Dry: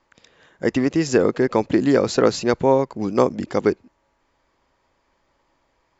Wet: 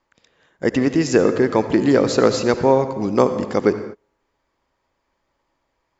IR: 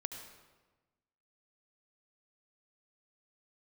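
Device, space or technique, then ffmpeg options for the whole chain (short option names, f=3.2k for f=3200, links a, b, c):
keyed gated reverb: -filter_complex "[0:a]asplit=3[a][b][c];[1:a]atrim=start_sample=2205[d];[b][d]afir=irnorm=-1:irlink=0[e];[c]apad=whole_len=264598[f];[e][f]sidechaingate=range=-33dB:threshold=-43dB:ratio=16:detection=peak,volume=4dB[g];[a][g]amix=inputs=2:normalize=0,volume=-5.5dB"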